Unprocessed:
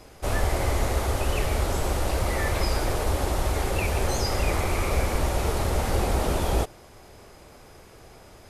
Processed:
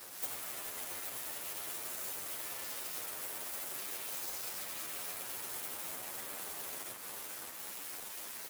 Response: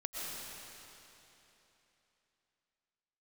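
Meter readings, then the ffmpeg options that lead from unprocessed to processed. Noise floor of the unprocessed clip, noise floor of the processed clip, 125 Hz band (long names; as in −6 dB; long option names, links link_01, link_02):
−49 dBFS, −47 dBFS, −37.5 dB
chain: -filter_complex "[0:a]highpass=frequency=89:width=0.5412,highpass=frequency=89:width=1.3066,aecho=1:1:562|1124|1686:0.224|0.0739|0.0244[link_01];[1:a]atrim=start_sample=2205,afade=type=out:start_time=0.38:duration=0.01,atrim=end_sample=17199[link_02];[link_01][link_02]afir=irnorm=-1:irlink=0,alimiter=limit=-24dB:level=0:latency=1:release=57,equalizer=frequency=5000:width=1.5:gain=-3,acompressor=threshold=-46dB:ratio=10,aeval=exprs='0.0133*(cos(1*acos(clip(val(0)/0.0133,-1,1)))-cos(1*PI/2))+0.00531*(cos(7*acos(clip(val(0)/0.0133,-1,1)))-cos(7*PI/2))':channel_layout=same,aemphasis=mode=production:type=bsi,asplit=2[link_03][link_04];[link_04]adelay=9.3,afreqshift=1.2[link_05];[link_03][link_05]amix=inputs=2:normalize=1,volume=2dB"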